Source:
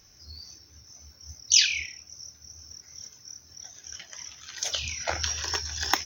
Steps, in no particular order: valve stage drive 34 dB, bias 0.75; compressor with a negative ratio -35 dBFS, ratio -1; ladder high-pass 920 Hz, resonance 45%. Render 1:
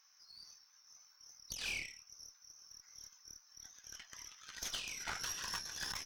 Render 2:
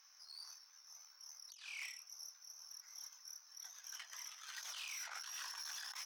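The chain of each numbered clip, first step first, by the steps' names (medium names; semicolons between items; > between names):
ladder high-pass > compressor with a negative ratio > valve stage; compressor with a negative ratio > valve stage > ladder high-pass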